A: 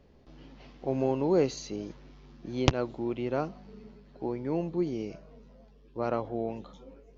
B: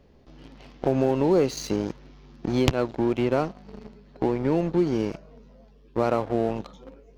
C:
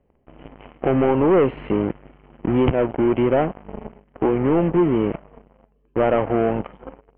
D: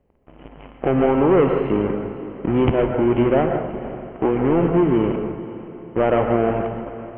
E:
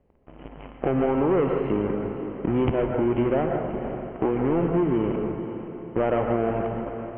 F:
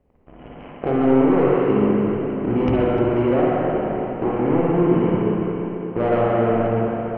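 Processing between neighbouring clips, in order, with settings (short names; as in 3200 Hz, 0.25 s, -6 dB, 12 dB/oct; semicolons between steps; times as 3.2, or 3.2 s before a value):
sample leveller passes 2; compressor 2.5:1, threshold -29 dBFS, peak gain reduction 11.5 dB; gain +7 dB
high shelf 2200 Hz -10 dB; sample leveller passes 3; rippled Chebyshev low-pass 3100 Hz, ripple 3 dB
diffused feedback echo 0.501 s, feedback 46%, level -15 dB; reverb RT60 0.70 s, pre-delay 0.112 s, DRR 5 dB
compressor 2:1, threshold -23 dBFS, peak gain reduction 7 dB; air absorption 120 m
tracing distortion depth 0.032 ms; split-band echo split 390 Hz, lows 0.176 s, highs 0.302 s, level -13 dB; spring tank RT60 1.8 s, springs 43/53/57 ms, chirp 20 ms, DRR -3.5 dB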